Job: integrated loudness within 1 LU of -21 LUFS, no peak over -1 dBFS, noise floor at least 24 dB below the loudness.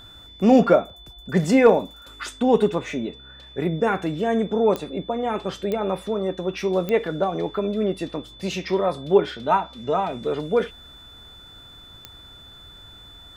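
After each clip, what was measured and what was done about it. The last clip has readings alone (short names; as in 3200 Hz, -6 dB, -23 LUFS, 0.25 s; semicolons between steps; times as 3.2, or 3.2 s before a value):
clicks 4; steady tone 3500 Hz; tone level -44 dBFS; loudness -22.5 LUFS; peak -4.5 dBFS; loudness target -21.0 LUFS
-> de-click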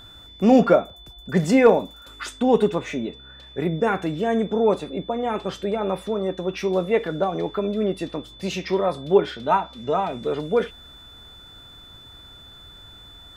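clicks 0; steady tone 3500 Hz; tone level -44 dBFS
-> notch 3500 Hz, Q 30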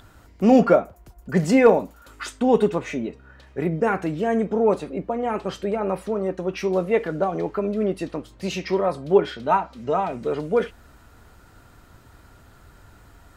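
steady tone none; loudness -22.5 LUFS; peak -4.5 dBFS; loudness target -21.0 LUFS
-> gain +1.5 dB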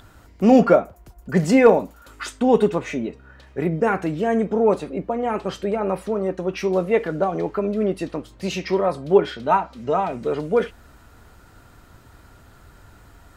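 loudness -21.0 LUFS; peak -3.0 dBFS; noise floor -50 dBFS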